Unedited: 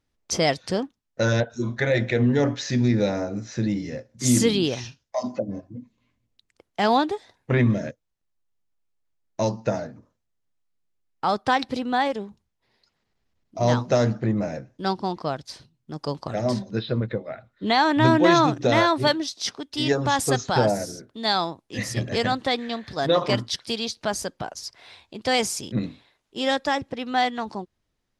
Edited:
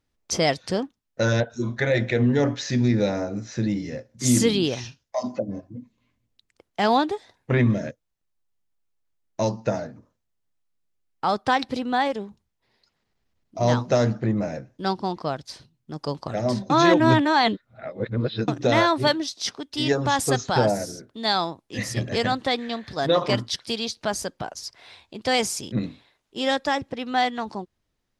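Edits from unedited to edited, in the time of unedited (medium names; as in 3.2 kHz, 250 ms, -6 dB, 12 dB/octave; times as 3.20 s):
16.70–18.48 s: reverse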